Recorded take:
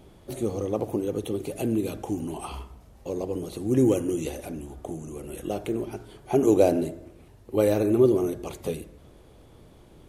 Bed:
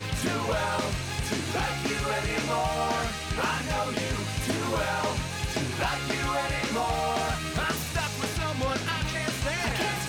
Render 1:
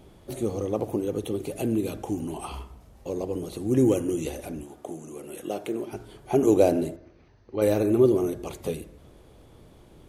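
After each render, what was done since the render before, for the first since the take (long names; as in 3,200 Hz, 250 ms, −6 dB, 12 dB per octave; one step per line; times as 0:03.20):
0:04.63–0:05.93: Bessel high-pass filter 240 Hz
0:06.96–0:07.62: Chebyshev low-pass with heavy ripple 6,300 Hz, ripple 6 dB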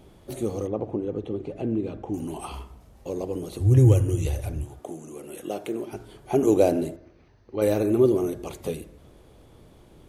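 0:00.67–0:02.14: head-to-tape spacing loss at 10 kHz 30 dB
0:03.59–0:04.80: low shelf with overshoot 150 Hz +12 dB, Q 3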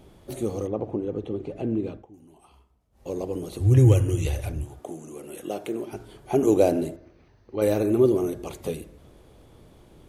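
0:01.88–0:03.10: duck −20 dB, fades 0.19 s
0:03.63–0:04.52: parametric band 2,400 Hz +4.5 dB 2.1 octaves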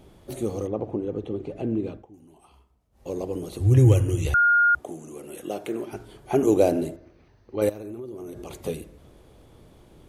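0:04.34–0:04.75: beep over 1,420 Hz −15 dBFS
0:05.60–0:06.43: dynamic equaliser 1,600 Hz, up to +6 dB, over −47 dBFS, Q 1.2
0:07.69–0:08.61: downward compressor 12 to 1, threshold −33 dBFS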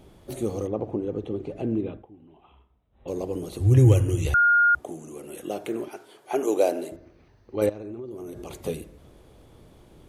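0:01.81–0:03.08: linear-phase brick-wall low-pass 4,000 Hz
0:05.88–0:06.92: high-pass filter 440 Hz
0:07.66–0:08.11: high-frequency loss of the air 110 metres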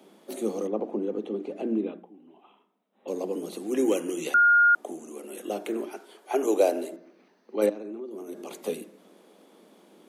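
Butterworth high-pass 180 Hz 96 dB per octave
mains-hum notches 60/120/180/240/300/360 Hz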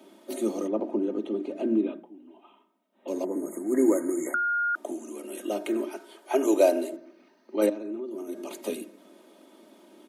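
0:03.24–0:04.41: time-frequency box erased 2,200–6,400 Hz
comb filter 3.2 ms, depth 67%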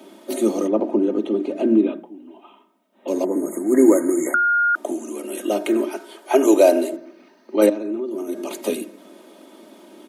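level +8.5 dB
brickwall limiter −3 dBFS, peak gain reduction 3 dB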